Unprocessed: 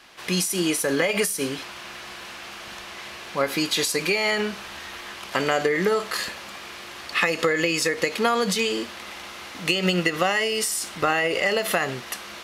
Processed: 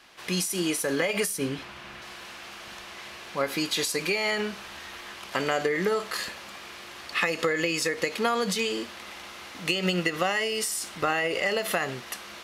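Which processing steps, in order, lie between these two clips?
0:01.38–0:02.02: bass and treble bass +7 dB, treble −7 dB
level −4 dB

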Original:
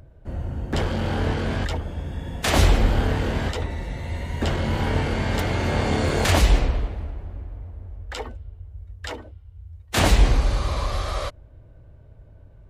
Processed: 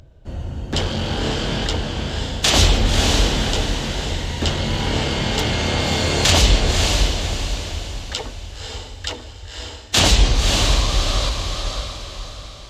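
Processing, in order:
flat-topped bell 4,600 Hz +10 dB
feedback delay with all-pass diffusion 553 ms, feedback 43%, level −3.5 dB
level +1 dB

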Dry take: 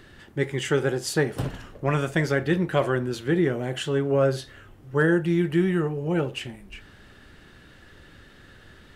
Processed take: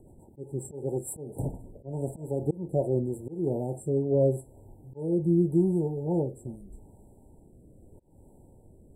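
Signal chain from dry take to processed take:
rotating-speaker cabinet horn 7.5 Hz, later 0.85 Hz, at 0:00.67
volume swells 280 ms
linear-phase brick-wall band-stop 970–7,400 Hz

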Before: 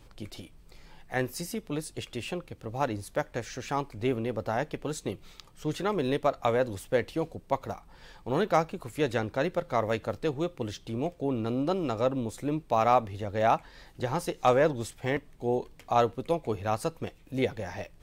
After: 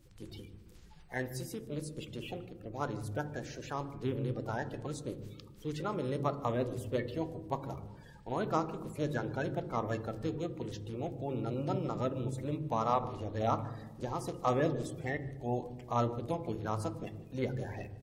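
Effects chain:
spectral magnitudes quantised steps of 30 dB
single-tap delay 150 ms −22.5 dB
on a send at −11.5 dB: convolution reverb RT60 1.2 s, pre-delay 11 ms
on the sum: level −7 dB

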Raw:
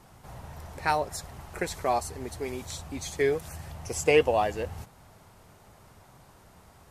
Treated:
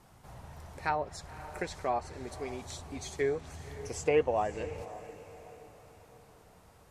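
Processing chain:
treble cut that deepens with the level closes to 1,900 Hz, closed at −21 dBFS
feedback delay with all-pass diffusion 540 ms, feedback 44%, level −14.5 dB
level −5 dB

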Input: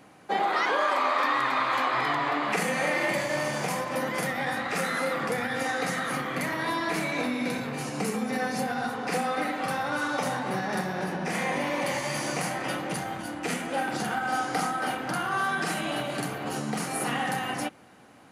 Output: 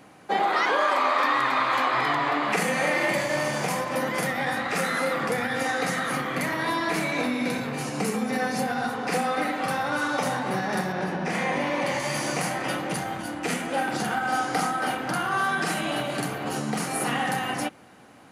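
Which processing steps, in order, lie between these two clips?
0:10.92–0:12.00: high-shelf EQ 9,200 Hz −12 dB
level +2.5 dB

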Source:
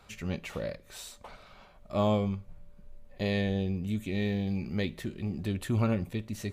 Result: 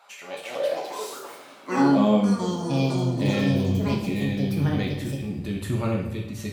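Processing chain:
delay with pitch and tempo change per echo 296 ms, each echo +5 semitones, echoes 3
high-pass filter sweep 770 Hz → 69 Hz, 0:00.11–0:03.79
coupled-rooms reverb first 0.65 s, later 2.3 s, DRR −1 dB

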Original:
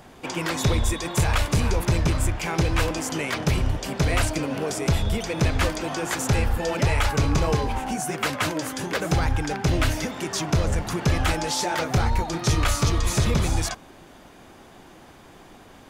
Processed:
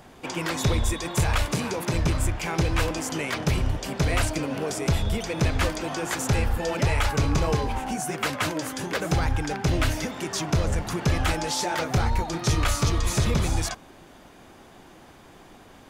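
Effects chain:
0:01.52–0:01.94: high-pass filter 140 Hz 24 dB per octave
level −1.5 dB

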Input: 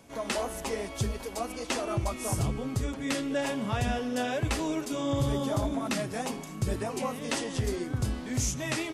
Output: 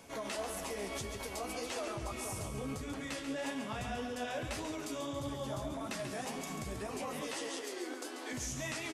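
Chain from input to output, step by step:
downward compressor 2.5 to 1, threshold −35 dBFS, peak gain reduction 8 dB
0:07.21–0:08.33: Butterworth high-pass 270 Hz 72 dB per octave
brickwall limiter −32.5 dBFS, peak gain reduction 10 dB
low-shelf EQ 390 Hz −6 dB
repeating echo 139 ms, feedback 49%, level −8 dB
flanger 1.7 Hz, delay 9.9 ms, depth 6.2 ms, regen +38%
level +6.5 dB

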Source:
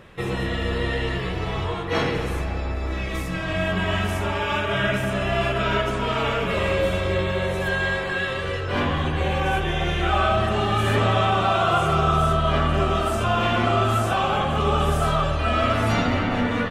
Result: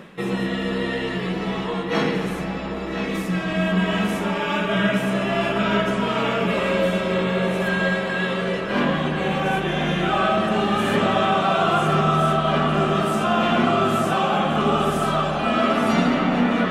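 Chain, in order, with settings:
reversed playback
upward compression, threshold −25 dBFS
reversed playback
low shelf with overshoot 130 Hz −12 dB, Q 3
feedback echo with a low-pass in the loop 1,024 ms, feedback 74%, low-pass 5,000 Hz, level −9 dB

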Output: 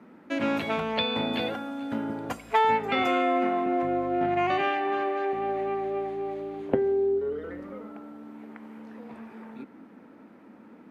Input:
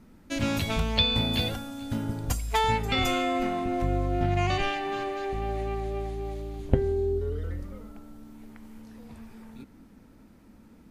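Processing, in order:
high-pass filter 150 Hz 12 dB per octave
three-way crossover with the lows and the highs turned down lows −15 dB, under 220 Hz, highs −20 dB, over 2,600 Hz
in parallel at −2 dB: downward compressor, threshold −43 dBFS, peak gain reduction 19.5 dB
on the sum: level +3 dB

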